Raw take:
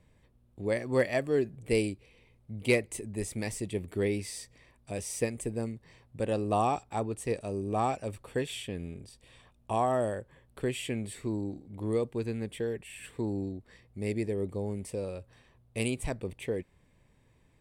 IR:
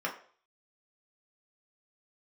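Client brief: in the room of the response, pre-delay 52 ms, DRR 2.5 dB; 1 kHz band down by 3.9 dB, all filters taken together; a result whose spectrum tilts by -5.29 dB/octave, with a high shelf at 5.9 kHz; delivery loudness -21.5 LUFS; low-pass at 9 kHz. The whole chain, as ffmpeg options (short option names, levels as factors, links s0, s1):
-filter_complex "[0:a]lowpass=9000,equalizer=f=1000:t=o:g=-6,highshelf=f=5900:g=5,asplit=2[s0][s1];[1:a]atrim=start_sample=2205,adelay=52[s2];[s1][s2]afir=irnorm=-1:irlink=0,volume=0.355[s3];[s0][s3]amix=inputs=2:normalize=0,volume=3.55"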